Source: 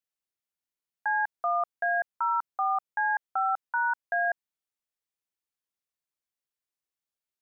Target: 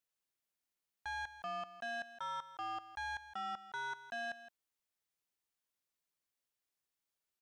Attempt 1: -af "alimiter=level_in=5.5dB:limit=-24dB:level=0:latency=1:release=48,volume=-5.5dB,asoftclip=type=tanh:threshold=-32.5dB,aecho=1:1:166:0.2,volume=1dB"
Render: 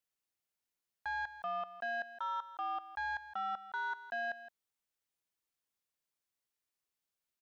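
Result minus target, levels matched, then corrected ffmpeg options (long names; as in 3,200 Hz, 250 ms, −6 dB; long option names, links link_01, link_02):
soft clipping: distortion −7 dB
-af "alimiter=level_in=5.5dB:limit=-24dB:level=0:latency=1:release=48,volume=-5.5dB,asoftclip=type=tanh:threshold=-39dB,aecho=1:1:166:0.2,volume=1dB"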